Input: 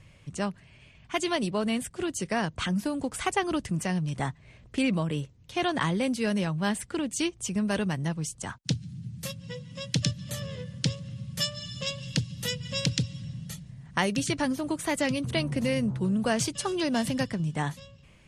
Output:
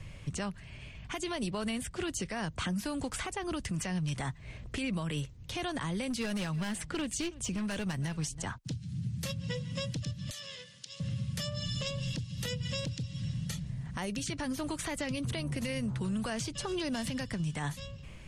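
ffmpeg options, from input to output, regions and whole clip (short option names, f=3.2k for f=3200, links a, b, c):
-filter_complex "[0:a]asettb=1/sr,asplit=3[a][b][c];[a]atrim=end=6.104[d];[b]atrim=start=6.1:end=8.43,asetpts=PTS-STARTPTS,afade=t=in:d=0.004:c=qsin,afade=t=out:st=2.326:d=0.004:c=qsin,volume=24dB,asoftclip=hard,volume=-24dB,aecho=1:1:326:0.075,atrim=end_sample=102753[e];[c]atrim=start=8.426[f];[d][e]acrossfade=d=0.004:c1=hsin:c2=qsin[g];[g][f]acrossfade=d=0.004:c1=qsin:c2=hsin,asettb=1/sr,asplit=3[h][i][j];[h]atrim=end=10.304[k];[i]atrim=start=10.3:end=11,asetpts=PTS-STARTPTS,afade=t=in:d=0.004:c=qsin,afade=t=out:st=0.696:d=0.004:c=qsin,bandpass=f=4.9k:t=q:w=0.67,acompressor=threshold=-43dB:ratio=6:attack=3.2:release=140:knee=1:detection=peak[l];[j]atrim=start=10.996[m];[k][l]acrossfade=d=0.004:c1=hsin:c2=qsin[n];[n][m]acrossfade=d=0.004:c1=qsin:c2=hsin,lowshelf=f=62:g=11,acrossover=split=84|1100|6800[o][p][q][r];[o]acompressor=threshold=-49dB:ratio=4[s];[p]acompressor=threshold=-39dB:ratio=4[t];[q]acompressor=threshold=-42dB:ratio=4[u];[r]acompressor=threshold=-53dB:ratio=4[v];[s][t][u][v]amix=inputs=4:normalize=0,alimiter=level_in=6.5dB:limit=-24dB:level=0:latency=1:release=57,volume=-6.5dB,volume=5dB"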